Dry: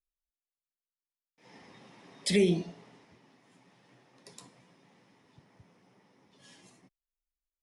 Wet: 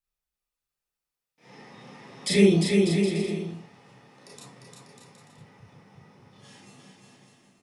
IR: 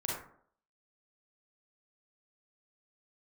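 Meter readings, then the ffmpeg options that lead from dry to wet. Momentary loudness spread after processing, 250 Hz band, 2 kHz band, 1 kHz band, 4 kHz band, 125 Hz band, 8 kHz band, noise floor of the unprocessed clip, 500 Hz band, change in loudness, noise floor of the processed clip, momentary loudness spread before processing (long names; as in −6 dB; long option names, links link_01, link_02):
15 LU, +10.0 dB, +8.0 dB, +9.0 dB, +6.5 dB, +10.0 dB, +6.5 dB, below −85 dBFS, +8.0 dB, +6.0 dB, below −85 dBFS, 13 LU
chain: -filter_complex "[0:a]aecho=1:1:350|595|766.5|886.6|970.6:0.631|0.398|0.251|0.158|0.1[link_01];[1:a]atrim=start_sample=2205,atrim=end_sample=3969,asetrate=57330,aresample=44100[link_02];[link_01][link_02]afir=irnorm=-1:irlink=0,asoftclip=type=hard:threshold=-12.5dB,volume=5.5dB"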